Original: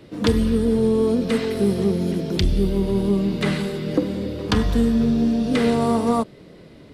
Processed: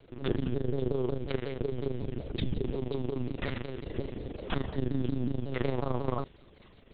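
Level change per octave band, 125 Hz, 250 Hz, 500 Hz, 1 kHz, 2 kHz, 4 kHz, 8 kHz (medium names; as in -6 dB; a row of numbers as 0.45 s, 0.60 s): -9.0 dB, -16.0 dB, -12.0 dB, -12.5 dB, -11.5 dB, -14.0 dB, under -40 dB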